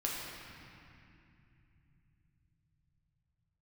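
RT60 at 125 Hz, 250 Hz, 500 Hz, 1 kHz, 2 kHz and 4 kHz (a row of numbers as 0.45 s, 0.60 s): 7.4 s, 4.8 s, 2.6 s, 2.5 s, 2.8 s, 2.0 s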